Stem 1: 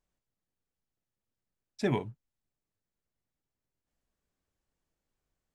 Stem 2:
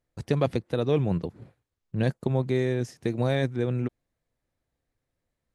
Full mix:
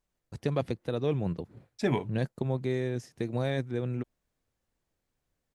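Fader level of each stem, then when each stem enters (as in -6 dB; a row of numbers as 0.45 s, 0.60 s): +1.5 dB, -5.0 dB; 0.00 s, 0.15 s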